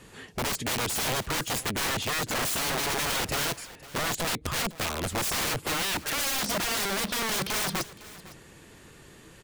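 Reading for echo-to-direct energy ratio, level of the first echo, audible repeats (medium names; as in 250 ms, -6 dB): -18.5 dB, -18.5 dB, 1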